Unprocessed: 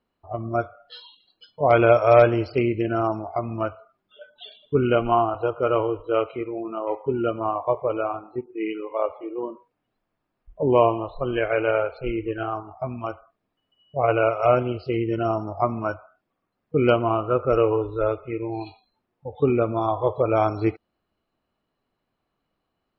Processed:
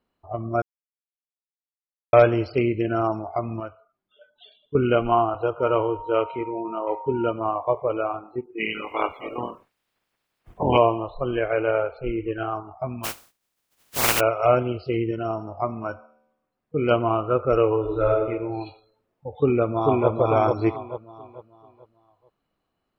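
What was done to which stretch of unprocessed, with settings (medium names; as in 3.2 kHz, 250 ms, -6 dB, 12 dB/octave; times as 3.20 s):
0.62–2.13 s: mute
3.60–4.75 s: gain -8.5 dB
5.59–7.31 s: whistle 930 Hz -34 dBFS
8.58–10.76 s: spectral peaks clipped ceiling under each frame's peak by 26 dB
11.36–12.20 s: treble shelf 2.4 kHz -7.5 dB
13.03–14.19 s: spectral contrast reduction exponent 0.12
15.11–16.91 s: feedback comb 75 Hz, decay 0.93 s, mix 40%
17.79–18.20 s: reverb throw, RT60 0.96 s, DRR 0 dB
19.31–20.09 s: echo throw 440 ms, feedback 35%, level -2 dB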